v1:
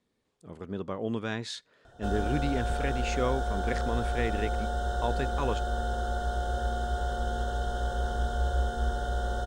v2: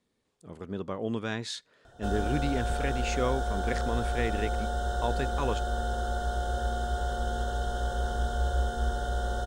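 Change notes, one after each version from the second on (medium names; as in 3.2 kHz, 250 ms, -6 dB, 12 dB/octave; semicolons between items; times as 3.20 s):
master: add treble shelf 6.1 kHz +4.5 dB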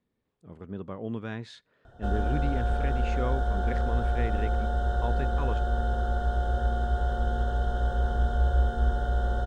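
speech -4.5 dB; master: add tone controls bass +5 dB, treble -14 dB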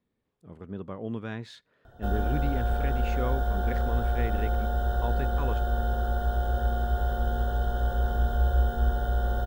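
master: remove low-pass 9.9 kHz 24 dB/octave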